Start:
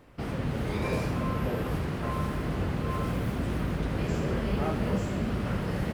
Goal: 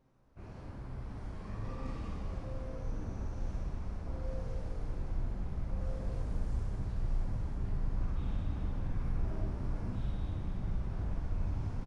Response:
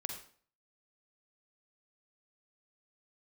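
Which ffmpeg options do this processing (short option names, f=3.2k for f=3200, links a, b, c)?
-filter_complex "[0:a]asubboost=boost=9.5:cutoff=110,asetrate=22050,aresample=44100,flanger=delay=7.4:depth=3.8:regen=63:speed=1.1:shape=triangular,aeval=exprs='0.0944*(abs(mod(val(0)/0.0944+3,4)-2)-1)':c=same,asplit=9[a][b][c][d][e][f][g][h][i];[b]adelay=235,afreqshift=-54,volume=-6.5dB[j];[c]adelay=470,afreqshift=-108,volume=-10.8dB[k];[d]adelay=705,afreqshift=-162,volume=-15.1dB[l];[e]adelay=940,afreqshift=-216,volume=-19.4dB[m];[f]adelay=1175,afreqshift=-270,volume=-23.7dB[n];[g]adelay=1410,afreqshift=-324,volume=-28dB[o];[h]adelay=1645,afreqshift=-378,volume=-32.3dB[p];[i]adelay=1880,afreqshift=-432,volume=-36.6dB[q];[a][j][k][l][m][n][o][p][q]amix=inputs=9:normalize=0[r];[1:a]atrim=start_sample=2205[s];[r][s]afir=irnorm=-1:irlink=0,volume=-8.5dB"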